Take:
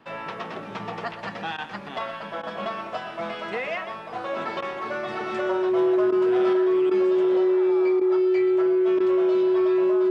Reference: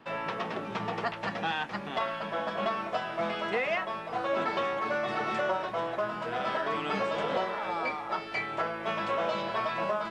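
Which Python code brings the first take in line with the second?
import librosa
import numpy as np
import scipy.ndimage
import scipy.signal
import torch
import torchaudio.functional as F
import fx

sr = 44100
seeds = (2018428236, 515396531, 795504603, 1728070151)

y = fx.notch(x, sr, hz=370.0, q=30.0)
y = fx.fix_interpolate(y, sr, at_s=(1.57, 2.42, 4.61, 6.11, 6.9, 8.0, 8.99), length_ms=11.0)
y = fx.fix_echo_inverse(y, sr, delay_ms=124, level_db=-12.0)
y = fx.gain(y, sr, db=fx.steps((0.0, 0.0), (6.53, 5.5)))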